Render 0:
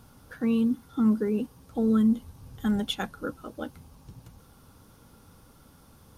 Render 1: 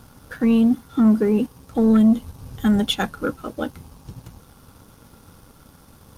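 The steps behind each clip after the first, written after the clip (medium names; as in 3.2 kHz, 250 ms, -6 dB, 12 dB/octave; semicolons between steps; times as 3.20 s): waveshaping leveller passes 1; trim +5.5 dB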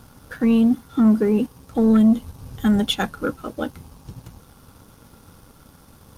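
no audible change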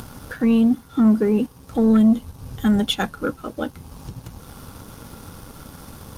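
upward compressor, threshold -28 dBFS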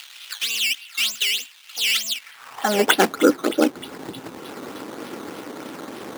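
feedback echo behind a high-pass 311 ms, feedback 65%, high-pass 2.4 kHz, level -13 dB; decimation with a swept rate 12×, swing 100% 3.3 Hz; high-pass sweep 2.9 kHz -> 330 Hz, 2.14–2.93 s; trim +5.5 dB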